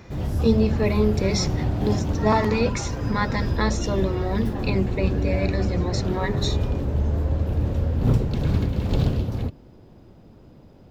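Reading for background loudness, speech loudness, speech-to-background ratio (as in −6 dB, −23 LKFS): −25.5 LKFS, −25.5 LKFS, 0.0 dB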